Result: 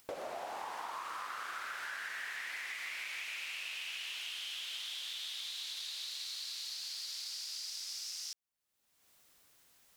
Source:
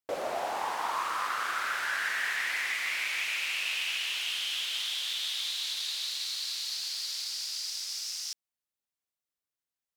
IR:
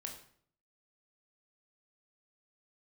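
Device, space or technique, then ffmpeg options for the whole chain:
upward and downward compression: -af "acompressor=mode=upward:threshold=0.01:ratio=2.5,acompressor=threshold=0.0158:ratio=6,volume=0.708"

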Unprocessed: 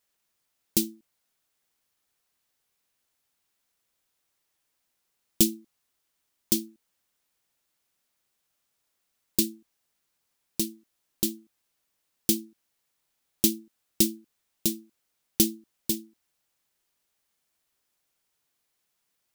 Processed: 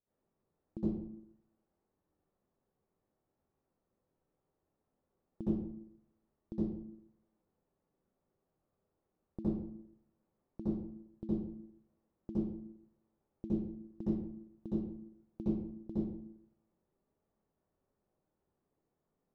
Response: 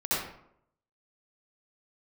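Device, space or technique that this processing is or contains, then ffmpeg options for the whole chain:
television next door: -filter_complex "[0:a]acompressor=threshold=0.0178:ratio=4,lowpass=530[s0];[1:a]atrim=start_sample=2205[s1];[s0][s1]afir=irnorm=-1:irlink=0,volume=0.891"

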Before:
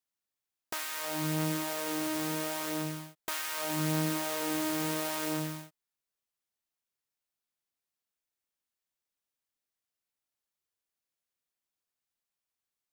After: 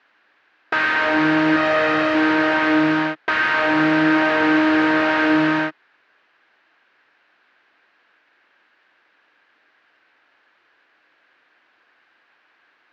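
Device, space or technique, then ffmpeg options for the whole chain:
overdrive pedal into a guitar cabinet: -filter_complex "[0:a]asplit=2[s0][s1];[s1]highpass=f=720:p=1,volume=63.1,asoftclip=type=tanh:threshold=0.141[s2];[s0][s2]amix=inputs=2:normalize=0,lowpass=f=3100:p=1,volume=0.501,highpass=100,equalizer=f=170:t=q:w=4:g=-6,equalizer=f=310:t=q:w=4:g=6,equalizer=f=1600:t=q:w=4:g=9,equalizer=f=3400:t=q:w=4:g=-5,lowpass=f=3400:w=0.5412,lowpass=f=3400:w=1.3066,asettb=1/sr,asplit=3[s3][s4][s5];[s3]atrim=end=1.564[s6];[s4]atrim=start=1.56:end=2.15,asetpts=PTS-STARTPTS,afade=t=in:d=0.004:c=qsin,afade=t=out:st=0.586:d=0.004:c=qsin,aecho=1:1:1.6:0.51,atrim=end_sample=26019[s7];[s5]atrim=start=2.146[s8];[s6][s7]acrossfade=d=0.004:c1=hsin:c2=qsin[s9];[s9][s8]acrossfade=d=0.004:c1=qsin:c2=hsin,volume=2.37"

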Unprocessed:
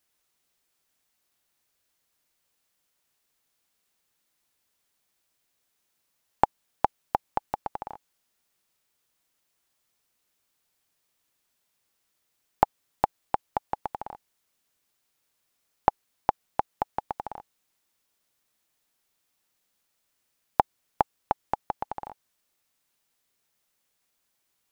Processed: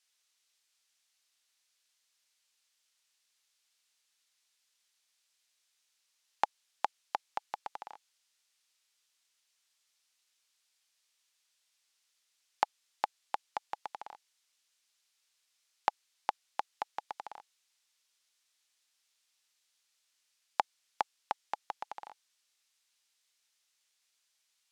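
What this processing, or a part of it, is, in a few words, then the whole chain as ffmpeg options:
piezo pickup straight into a mixer: -af "lowpass=5000,aderivative,volume=3.16"

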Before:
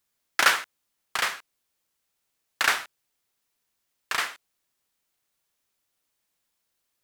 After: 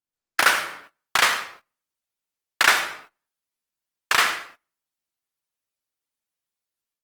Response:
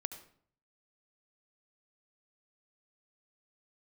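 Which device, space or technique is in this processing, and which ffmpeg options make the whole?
speakerphone in a meeting room: -filter_complex "[1:a]atrim=start_sample=2205[s0];[0:a][s0]afir=irnorm=-1:irlink=0,dynaudnorm=f=110:g=3:m=3.55,agate=range=0.1:threshold=0.00562:ratio=16:detection=peak" -ar 48000 -c:a libopus -b:a 24k

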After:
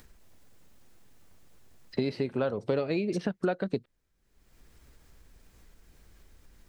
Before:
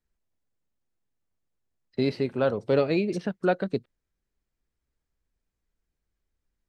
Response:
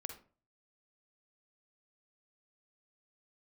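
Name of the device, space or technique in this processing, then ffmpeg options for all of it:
upward and downward compression: -af "acompressor=mode=upward:threshold=0.00562:ratio=2.5,acompressor=threshold=0.0251:ratio=6,volume=2"

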